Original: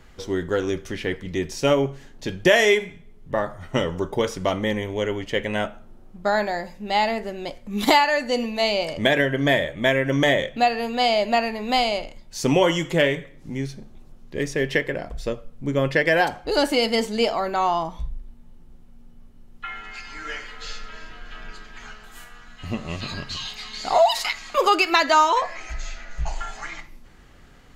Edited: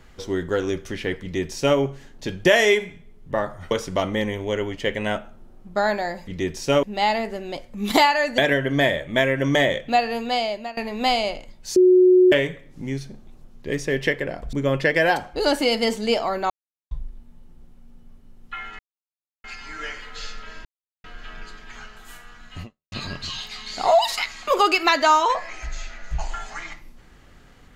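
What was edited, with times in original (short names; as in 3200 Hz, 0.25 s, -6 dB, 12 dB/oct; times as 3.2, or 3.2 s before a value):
1.22–1.78 copy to 6.76
3.71–4.2 cut
8.31–9.06 cut
10.86–11.45 fade out, to -21 dB
12.44–13 bleep 366 Hz -10 dBFS
15.21–15.64 cut
17.61–18.02 mute
19.9 insert silence 0.65 s
21.11 insert silence 0.39 s
22.69–22.99 fade out exponential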